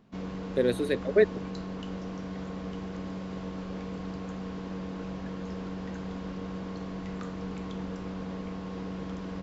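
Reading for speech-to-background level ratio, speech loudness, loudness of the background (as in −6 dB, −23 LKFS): 10.0 dB, −27.5 LKFS, −37.5 LKFS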